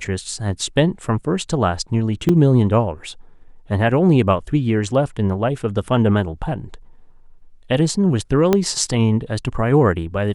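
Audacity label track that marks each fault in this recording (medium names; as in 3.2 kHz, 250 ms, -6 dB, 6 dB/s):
2.290000	2.290000	dropout 4 ms
8.530000	8.530000	pop -3 dBFS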